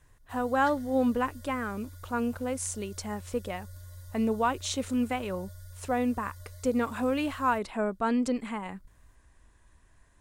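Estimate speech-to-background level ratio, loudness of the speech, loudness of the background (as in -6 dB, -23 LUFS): 17.5 dB, -30.5 LUFS, -48.0 LUFS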